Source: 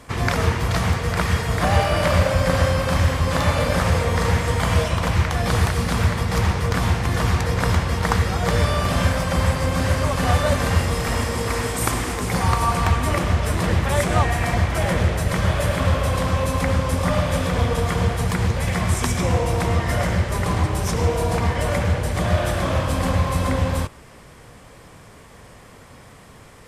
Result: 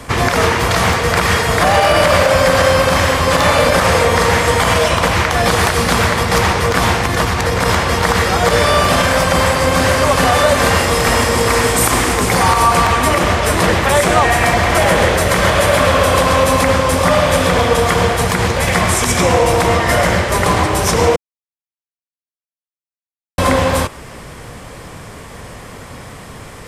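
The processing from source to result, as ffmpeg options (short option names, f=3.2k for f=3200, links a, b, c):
-filter_complex "[0:a]asettb=1/sr,asplit=3[a][b][c];[a]atrim=end=7.024[d];[b]atrim=start=7.02:end=7.63,asetpts=PTS-STARTPTS,afade=t=in:d=0.004:c=qsin,afade=t=out:st=0.606:d=0.004:c=qsin,acompressor=threshold=-19dB:ratio=6:attack=3.2:release=140:knee=1:detection=peak[e];[c]atrim=start=7.626[f];[d][e]acrossfade=d=0.004:c1=hsin:c2=qsin[g];[g][f]acrossfade=d=0.004:c1=qsin:c2=hsin,asettb=1/sr,asplit=3[h][i][j];[h]atrim=end=14.504[k];[i]atrim=start=14.5:end=16.68,asetpts=PTS-STARTPTS,afade=t=in:d=0.004:c=qsin,afade=t=out:st=2.176:d=0.004:c=qsin,aecho=1:1:131:0.531,atrim=end_sample=96138[l];[j]atrim=start=16.676[m];[k][l]acrossfade=d=0.004:c1=hsin:c2=qsin[n];[n][m]acrossfade=d=0.004:c1=qsin:c2=hsin,asplit=3[o][p][q];[o]atrim=end=21.16,asetpts=PTS-STARTPTS,afade=t=out:st=21.156:d=0.004:c=hsin[r];[p]atrim=start=21.16:end=23.38,asetpts=PTS-STARTPTS,volume=0[s];[q]atrim=start=23.38,asetpts=PTS-STARTPTS,afade=t=in:d=0.004:c=hsin[t];[r][s][t]concat=n=3:v=0:a=1,acrossover=split=270|3000[u][v][w];[u]acompressor=threshold=-30dB:ratio=6[x];[x][v][w]amix=inputs=3:normalize=0,alimiter=level_in=13dB:limit=-1dB:release=50:level=0:latency=1,volume=-1dB"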